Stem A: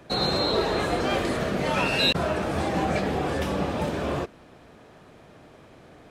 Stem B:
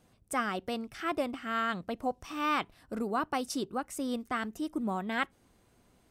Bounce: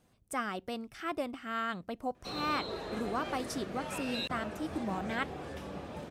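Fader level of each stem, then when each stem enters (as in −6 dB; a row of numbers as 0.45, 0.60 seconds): −15.5, −3.5 decibels; 2.15, 0.00 seconds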